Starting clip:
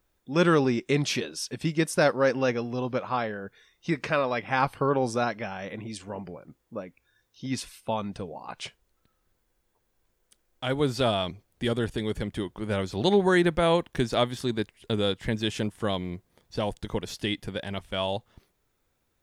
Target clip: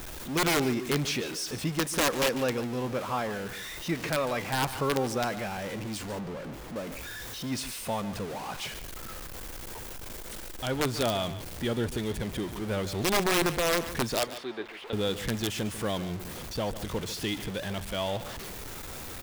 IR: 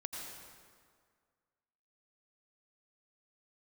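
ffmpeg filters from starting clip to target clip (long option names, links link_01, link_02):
-filter_complex "[0:a]aeval=exprs='val(0)+0.5*0.0355*sgn(val(0))':channel_layout=same,asettb=1/sr,asplit=3[link_01][link_02][link_03];[link_01]atrim=end=14.194[link_04];[link_02]atrim=start=14.19:end=14.93,asetpts=PTS-STARTPTS,afade=type=in:duration=0.004:curve=qsin,afade=type=out:start_time=0.736:duration=0.004:curve=qsin,acrossover=split=330 3700:gain=0.0708 1 0.0891[link_05][link_06][link_07];[link_05][link_06][link_07]amix=inputs=3:normalize=0[link_08];[link_03]atrim=start=14.926[link_09];[link_04][link_08]acrossfade=duration=0.004:curve1=hsin:curve2=qsin[link_10];[link_10][link_09]acrossfade=duration=0.004:curve1=qsin:curve2=hsin,aeval=exprs='(mod(5.01*val(0)+1,2)-1)/5.01':channel_layout=same,asettb=1/sr,asplit=3[link_11][link_12][link_13];[link_11]atrim=end=6.194[link_14];[link_12]atrim=start=6.19:end=6.76,asetpts=PTS-STARTPTS,afade=type=in:duration=0.004:curve=qsin,afade=type=out:start_time=0.566:duration=0.004:curve=qsin,highshelf=frequency=4800:gain=-11.5[link_15];[link_13]atrim=start=6.756[link_16];[link_14][link_15]acrossfade=duration=0.004:curve1=hsin:curve2=qsin[link_17];[link_17][link_16]acrossfade=duration=0.004:curve1=qsin:curve2=hsin,asplit=2[link_18][link_19];[link_19]aecho=0:1:145:0.211[link_20];[link_18][link_20]amix=inputs=2:normalize=0,volume=-5dB"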